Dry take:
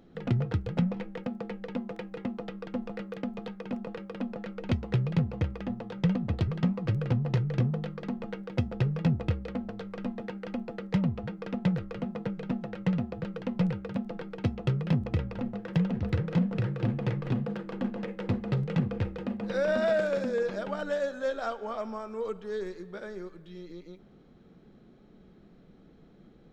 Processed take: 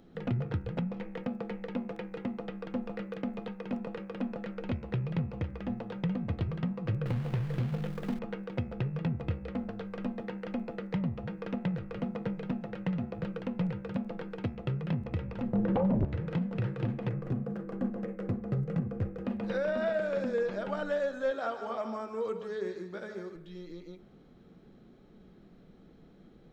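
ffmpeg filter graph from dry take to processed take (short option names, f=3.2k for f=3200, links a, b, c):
-filter_complex "[0:a]asettb=1/sr,asplit=3[a][b][c];[a]atrim=end=7.064[d];[b]atrim=start=7.06:end=8.19,asetpts=PTS-STARTPTS,afade=t=in:d=0.004:c=qsin,afade=t=out:st=1.126:d=0.004:c=qsin,acrusher=bits=3:mode=log:mix=0:aa=0.000001,lowshelf=f=74:g=11[e];[c]atrim=start=8.186[f];[d][e]acrossfade=d=0.004:c1=hsin:c2=qsin[g];[g][f]acrossfade=d=0.004:c1=qsin:c2=hsin,asettb=1/sr,asplit=3[h][i][j];[h]atrim=end=15.534[k];[i]atrim=start=15.53:end=16.05,asetpts=PTS-STARTPTS,afade=t=in:d=0.004:c=qsin,afade=t=out:st=0.516:d=0.004:c=qsin,tiltshelf=f=770:g=8.5,aeval=exprs='0.447*sin(PI/2*4.47*val(0)/0.447)':c=same[l];[j]atrim=start=16.046[m];[k][l]acrossfade=d=0.004:c1=hsin:c2=qsin[n];[n][m]acrossfade=d=0.004:c1=qsin:c2=hsin,asettb=1/sr,asplit=3[o][p][q];[o]atrim=end=17.094[r];[p]atrim=start=17.09:end=19.25,asetpts=PTS-STARTPTS,afade=t=in:d=0.004:c=qsin,afade=t=out:st=2.156:d=0.004:c=qsin,asuperstop=centerf=910:order=4:qfactor=7.4,equalizer=f=3.5k:t=o:w=1.7:g=-15[s];[q]atrim=start=19.246[t];[r][s]acrossfade=d=0.004:c1=hsin:c2=qsin[u];[u][t]acrossfade=d=0.004:c1=qsin:c2=hsin,asettb=1/sr,asplit=3[v][w][x];[v]atrim=end=21.314[y];[w]atrim=start=21.31:end=23.36,asetpts=PTS-STARTPTS,afade=t=in:d=0.004:c=qsin,afade=t=out:st=2.046:d=0.004:c=qsin,highpass=91,aecho=1:1:151:0.316,atrim=end_sample=90405[z];[x]atrim=start=23.356[aa];[y][z]acrossfade=d=0.004:c1=hsin:c2=qsin[ab];[ab][aa]acrossfade=d=0.004:c1=qsin:c2=hsin,acrossover=split=3600[ac][ad];[ad]acompressor=threshold=-59dB:ratio=4:attack=1:release=60[ae];[ac][ae]amix=inputs=2:normalize=0,bandreject=f=70.97:t=h:w=4,bandreject=f=141.94:t=h:w=4,bandreject=f=212.91:t=h:w=4,bandreject=f=283.88:t=h:w=4,bandreject=f=354.85:t=h:w=4,bandreject=f=425.82:t=h:w=4,bandreject=f=496.79:t=h:w=4,bandreject=f=567.76:t=h:w=4,bandreject=f=638.73:t=h:w=4,bandreject=f=709.7:t=h:w=4,bandreject=f=780.67:t=h:w=4,bandreject=f=851.64:t=h:w=4,bandreject=f=922.61:t=h:w=4,bandreject=f=993.58:t=h:w=4,bandreject=f=1.06455k:t=h:w=4,bandreject=f=1.13552k:t=h:w=4,bandreject=f=1.20649k:t=h:w=4,bandreject=f=1.27746k:t=h:w=4,bandreject=f=1.34843k:t=h:w=4,bandreject=f=1.4194k:t=h:w=4,bandreject=f=1.49037k:t=h:w=4,bandreject=f=1.56134k:t=h:w=4,bandreject=f=1.63231k:t=h:w=4,bandreject=f=1.70328k:t=h:w=4,bandreject=f=1.77425k:t=h:w=4,bandreject=f=1.84522k:t=h:w=4,bandreject=f=1.91619k:t=h:w=4,bandreject=f=1.98716k:t=h:w=4,bandreject=f=2.05813k:t=h:w=4,bandreject=f=2.1291k:t=h:w=4,bandreject=f=2.20007k:t=h:w=4,bandreject=f=2.27104k:t=h:w=4,bandreject=f=2.34201k:t=h:w=4,bandreject=f=2.41298k:t=h:w=4,bandreject=f=2.48395k:t=h:w=4,bandreject=f=2.55492k:t=h:w=4,bandreject=f=2.62589k:t=h:w=4,bandreject=f=2.69686k:t=h:w=4,alimiter=limit=-22dB:level=0:latency=1:release=335"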